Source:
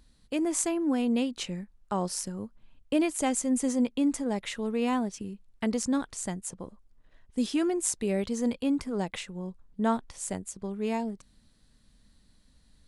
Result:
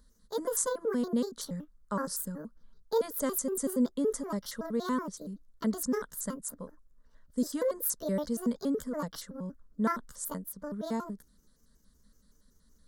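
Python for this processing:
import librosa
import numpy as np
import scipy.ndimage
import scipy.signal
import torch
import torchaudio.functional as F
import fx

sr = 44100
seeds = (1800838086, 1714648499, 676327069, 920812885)

y = fx.pitch_trill(x, sr, semitones=7.0, every_ms=94)
y = fx.fixed_phaser(y, sr, hz=510.0, stages=8)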